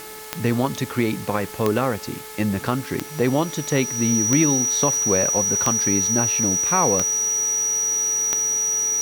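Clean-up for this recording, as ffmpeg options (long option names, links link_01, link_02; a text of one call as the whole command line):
ffmpeg -i in.wav -af "adeclick=threshold=4,bandreject=frequency=432.3:width_type=h:width=4,bandreject=frequency=864.6:width_type=h:width=4,bandreject=frequency=1296.9:width_type=h:width=4,bandreject=frequency=1729.2:width_type=h:width=4,bandreject=frequency=2161.5:width_type=h:width=4,bandreject=frequency=5800:width=30,afftdn=noise_reduction=30:noise_floor=-34" out.wav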